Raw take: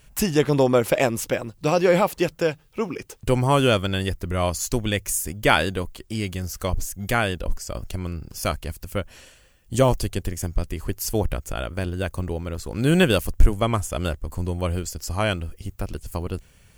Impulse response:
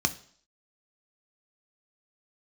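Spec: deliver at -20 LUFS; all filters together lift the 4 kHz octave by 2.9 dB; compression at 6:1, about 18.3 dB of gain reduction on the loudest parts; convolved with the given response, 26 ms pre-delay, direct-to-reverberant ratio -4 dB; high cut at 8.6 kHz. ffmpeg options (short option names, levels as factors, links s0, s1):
-filter_complex "[0:a]lowpass=8600,equalizer=f=4000:t=o:g=4,acompressor=threshold=0.0398:ratio=6,asplit=2[s0][s1];[1:a]atrim=start_sample=2205,adelay=26[s2];[s1][s2]afir=irnorm=-1:irlink=0,volume=0.596[s3];[s0][s3]amix=inputs=2:normalize=0,volume=2.11"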